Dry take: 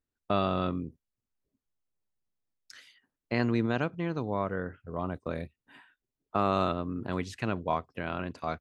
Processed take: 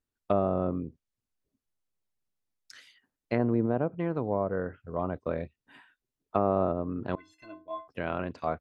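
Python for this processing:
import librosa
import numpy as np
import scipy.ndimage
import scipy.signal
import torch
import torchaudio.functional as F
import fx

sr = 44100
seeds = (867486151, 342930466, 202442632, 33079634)

y = fx.dynamic_eq(x, sr, hz=560.0, q=1.2, threshold_db=-42.0, ratio=4.0, max_db=5)
y = fx.stiff_resonator(y, sr, f0_hz=310.0, decay_s=0.38, stiffness=0.03, at=(7.15, 7.88))
y = fx.env_lowpass_down(y, sr, base_hz=860.0, full_db=-23.0)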